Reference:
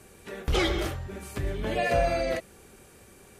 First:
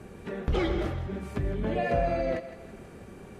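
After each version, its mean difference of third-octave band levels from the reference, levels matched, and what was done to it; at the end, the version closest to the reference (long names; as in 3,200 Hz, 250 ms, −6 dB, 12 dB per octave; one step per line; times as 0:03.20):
6.0 dB: low-pass filter 1,300 Hz 6 dB per octave
parametric band 190 Hz +5 dB 1.1 octaves
downward compressor 1.5 to 1, threshold −46 dBFS, peak gain reduction 9.5 dB
feedback echo with a high-pass in the loop 162 ms, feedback 56%, high-pass 500 Hz, level −12 dB
level +7 dB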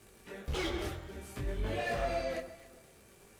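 3.0 dB: hard clipping −23.5 dBFS, distortion −12 dB
surface crackle 150 per second −41 dBFS
on a send: delay that swaps between a low-pass and a high-pass 133 ms, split 1,600 Hz, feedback 52%, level −10 dB
on the sum: micro pitch shift up and down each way 20 cents
level −3.5 dB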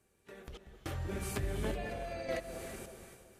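9.0 dB: downward compressor 6 to 1, threshold −38 dBFS, peak gain reduction 17.5 dB
sample-and-hold tremolo 3.5 Hz, depth 100%
delay that swaps between a low-pass and a high-pass 189 ms, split 950 Hz, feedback 54%, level −8.5 dB
reverb whose tail is shaped and stops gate 360 ms rising, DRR 10 dB
level +5.5 dB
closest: second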